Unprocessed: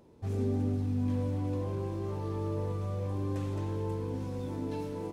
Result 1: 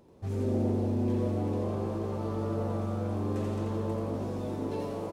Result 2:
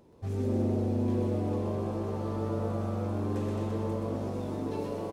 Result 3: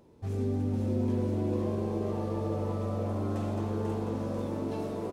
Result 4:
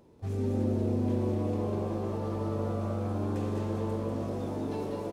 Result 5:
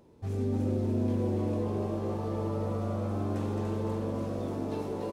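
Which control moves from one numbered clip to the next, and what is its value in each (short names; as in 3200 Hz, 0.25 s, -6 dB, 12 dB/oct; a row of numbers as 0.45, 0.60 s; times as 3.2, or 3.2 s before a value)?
frequency-shifting echo, time: 85, 126, 492, 195, 292 ms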